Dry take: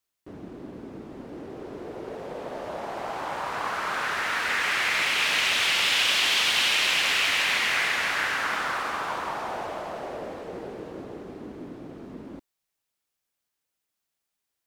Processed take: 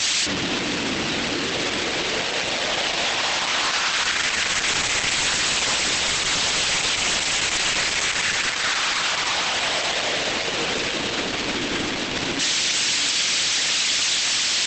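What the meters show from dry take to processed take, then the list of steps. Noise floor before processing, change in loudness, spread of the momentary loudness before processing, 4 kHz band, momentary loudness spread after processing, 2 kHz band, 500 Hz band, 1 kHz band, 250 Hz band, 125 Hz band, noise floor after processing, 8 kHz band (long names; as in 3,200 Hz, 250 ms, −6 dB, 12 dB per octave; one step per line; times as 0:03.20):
−83 dBFS, +3.5 dB, 21 LU, +7.0 dB, 4 LU, +3.5 dB, +6.0 dB, +3.0 dB, +9.5 dB, +10.0 dB, −26 dBFS, +13.5 dB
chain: linear delta modulator 64 kbit/s, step −22.5 dBFS
low-shelf EQ 120 Hz +7.5 dB
notch filter 410 Hz, Q 12
upward compression, threshold −43 dBFS
bit reduction 9 bits
meter weighting curve D
downward compressor 2.5 to 1, threshold −16 dBFS, peak gain reduction 5.5 dB
wrap-around overflow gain 13.5 dB
hum removal 53.14 Hz, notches 26
on a send: feedback delay with all-pass diffusion 655 ms, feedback 61%, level −15 dB
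on the sum: brickwall limiter −21 dBFS, peak gain reduction 10 dB
level +9 dB
Opus 12 kbit/s 48,000 Hz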